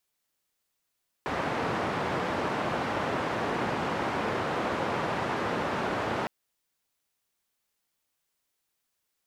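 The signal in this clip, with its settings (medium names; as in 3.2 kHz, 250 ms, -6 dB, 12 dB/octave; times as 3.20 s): noise band 110–1100 Hz, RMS -30 dBFS 5.01 s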